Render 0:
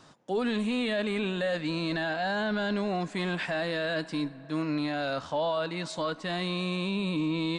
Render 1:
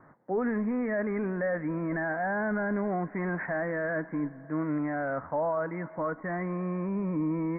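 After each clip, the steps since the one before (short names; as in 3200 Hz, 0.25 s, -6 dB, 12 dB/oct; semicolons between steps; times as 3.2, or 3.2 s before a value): steep low-pass 2100 Hz 96 dB/oct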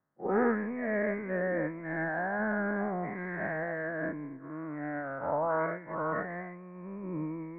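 spectral dilation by 0.24 s; expander -18 dBFS; gain +1 dB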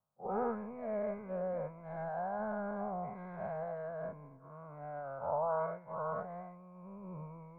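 fixed phaser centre 760 Hz, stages 4; gain -2.5 dB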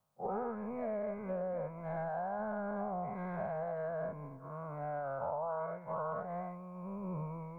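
compressor 6:1, threshold -42 dBFS, peak gain reduction 11.5 dB; gain +7 dB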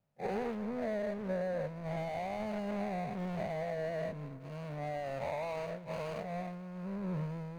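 median filter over 41 samples; gain +4 dB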